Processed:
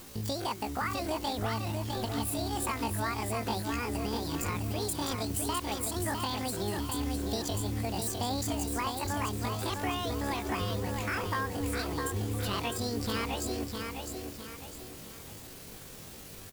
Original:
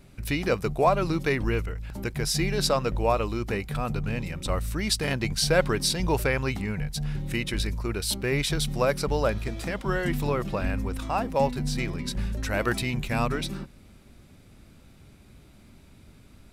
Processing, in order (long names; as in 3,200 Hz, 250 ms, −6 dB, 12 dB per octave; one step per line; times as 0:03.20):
downward compressor 8 to 1, threshold −30 dBFS, peak gain reduction 14.5 dB
background noise white −47 dBFS
pitch shifter +11.5 semitones
repeating echo 656 ms, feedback 39%, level −5 dB